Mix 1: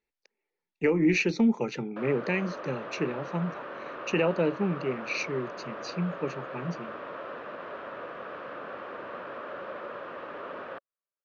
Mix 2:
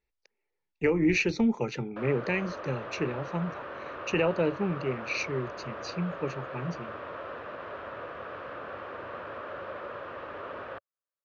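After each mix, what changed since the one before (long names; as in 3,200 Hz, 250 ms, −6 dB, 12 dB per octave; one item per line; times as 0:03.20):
master: add low shelf with overshoot 130 Hz +9.5 dB, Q 1.5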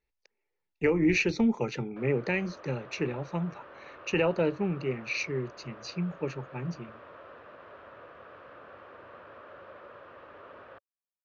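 background −9.5 dB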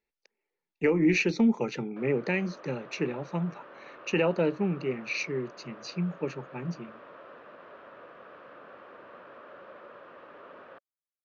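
master: add low shelf with overshoot 130 Hz −9.5 dB, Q 1.5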